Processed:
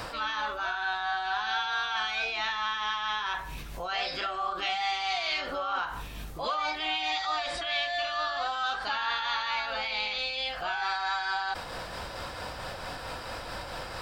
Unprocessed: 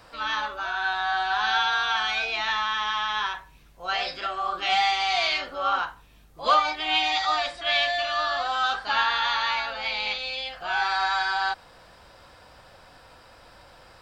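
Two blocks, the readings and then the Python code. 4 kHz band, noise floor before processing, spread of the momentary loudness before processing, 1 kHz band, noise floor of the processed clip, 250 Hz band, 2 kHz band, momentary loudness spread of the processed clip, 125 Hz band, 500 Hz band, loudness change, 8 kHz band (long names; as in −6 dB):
−5.0 dB, −52 dBFS, 7 LU, −5.5 dB, −40 dBFS, −1.0 dB, −5.0 dB, 9 LU, can't be measured, −3.5 dB, −6.0 dB, −3.0 dB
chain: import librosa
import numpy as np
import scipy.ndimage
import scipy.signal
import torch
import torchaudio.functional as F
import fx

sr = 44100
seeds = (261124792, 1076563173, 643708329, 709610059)

y = x * (1.0 - 0.71 / 2.0 + 0.71 / 2.0 * np.cos(2.0 * np.pi * 4.5 * (np.arange(len(x)) / sr)))
y = fx.env_flatten(y, sr, amount_pct=70)
y = y * librosa.db_to_amplitude(-7.0)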